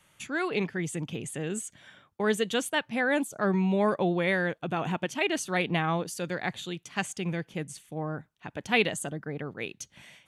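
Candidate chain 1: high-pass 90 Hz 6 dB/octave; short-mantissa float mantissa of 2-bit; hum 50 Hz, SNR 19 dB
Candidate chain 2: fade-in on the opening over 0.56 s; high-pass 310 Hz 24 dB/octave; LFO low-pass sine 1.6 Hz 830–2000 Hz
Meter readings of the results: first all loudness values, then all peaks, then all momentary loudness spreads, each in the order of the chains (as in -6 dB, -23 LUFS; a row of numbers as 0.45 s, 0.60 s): -30.0 LUFS, -29.5 LUFS; -12.0 dBFS, -10.0 dBFS; 12 LU, 13 LU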